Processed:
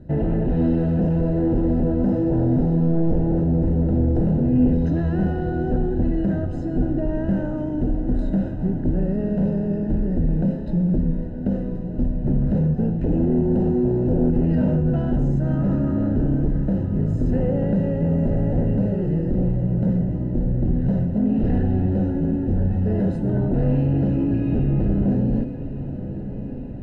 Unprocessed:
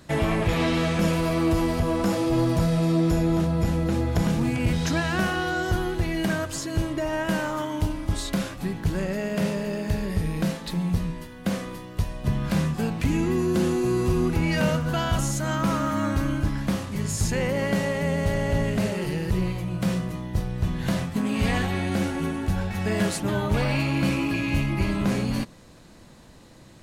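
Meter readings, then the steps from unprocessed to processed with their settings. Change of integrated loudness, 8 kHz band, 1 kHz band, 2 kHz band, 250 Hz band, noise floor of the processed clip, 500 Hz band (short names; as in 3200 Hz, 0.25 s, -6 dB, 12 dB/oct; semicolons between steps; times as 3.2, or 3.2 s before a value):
+3.5 dB, under -30 dB, -6.5 dB, under -10 dB, +5.0 dB, -29 dBFS, +1.5 dB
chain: tilt -2 dB/oct; sine folder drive 9 dB, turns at -6 dBFS; running mean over 39 samples; resonator 250 Hz, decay 1.2 s, mix 80%; diffused feedback echo 1.126 s, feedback 70%, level -12.5 dB; gain +4 dB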